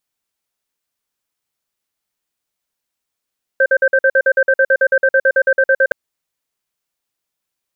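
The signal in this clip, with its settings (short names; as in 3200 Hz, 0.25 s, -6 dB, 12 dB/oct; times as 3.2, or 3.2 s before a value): cadence 536 Hz, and 1560 Hz, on 0.06 s, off 0.05 s, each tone -11.5 dBFS 2.32 s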